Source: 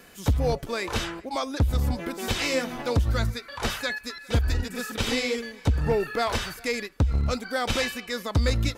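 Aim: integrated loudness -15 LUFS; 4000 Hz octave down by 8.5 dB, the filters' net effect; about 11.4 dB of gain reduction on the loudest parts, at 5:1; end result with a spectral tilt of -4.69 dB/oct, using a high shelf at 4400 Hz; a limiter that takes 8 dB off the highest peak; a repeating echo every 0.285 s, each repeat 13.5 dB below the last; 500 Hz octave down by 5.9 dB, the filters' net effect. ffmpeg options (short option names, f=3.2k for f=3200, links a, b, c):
-af "equalizer=f=500:t=o:g=-6.5,equalizer=f=4k:t=o:g=-6.5,highshelf=f=4.4k:g=-8,acompressor=threshold=-31dB:ratio=5,alimiter=level_in=5dB:limit=-24dB:level=0:latency=1,volume=-5dB,aecho=1:1:285|570:0.211|0.0444,volume=23.5dB"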